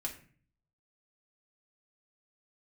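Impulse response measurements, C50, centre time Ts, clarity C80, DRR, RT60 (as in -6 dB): 10.5 dB, 14 ms, 14.5 dB, -1.5 dB, 0.45 s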